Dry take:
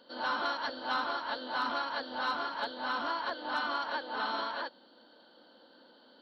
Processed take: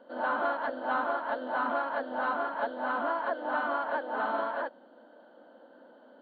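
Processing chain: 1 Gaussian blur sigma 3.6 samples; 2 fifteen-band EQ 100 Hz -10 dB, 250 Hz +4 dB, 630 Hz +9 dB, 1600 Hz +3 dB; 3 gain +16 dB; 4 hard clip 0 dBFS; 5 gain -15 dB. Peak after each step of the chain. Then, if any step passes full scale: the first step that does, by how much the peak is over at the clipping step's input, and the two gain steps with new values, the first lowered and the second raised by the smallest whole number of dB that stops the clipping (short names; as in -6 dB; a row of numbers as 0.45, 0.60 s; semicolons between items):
-24.0, -19.0, -3.0, -3.0, -18.0 dBFS; no overload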